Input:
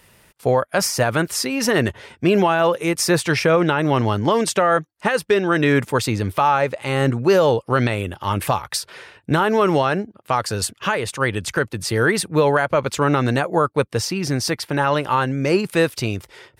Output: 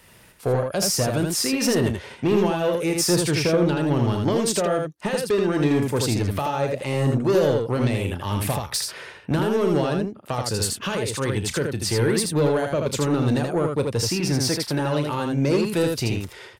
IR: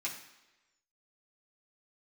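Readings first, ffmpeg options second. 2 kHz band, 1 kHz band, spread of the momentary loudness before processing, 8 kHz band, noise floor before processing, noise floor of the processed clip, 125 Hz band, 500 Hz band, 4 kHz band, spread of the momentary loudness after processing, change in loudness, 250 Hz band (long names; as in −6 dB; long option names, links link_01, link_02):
−9.0 dB, −9.0 dB, 7 LU, +0.5 dB, −58 dBFS, −47 dBFS, −0.5 dB, −3.5 dB, −1.0 dB, 6 LU, −3.0 dB, −1.0 dB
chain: -filter_complex "[0:a]acrossover=split=580|3000[link_01][link_02][link_03];[link_02]acompressor=threshold=-32dB:ratio=6[link_04];[link_01][link_04][link_03]amix=inputs=3:normalize=0,asoftclip=type=tanh:threshold=-15.5dB,aecho=1:1:34|80:0.251|0.631"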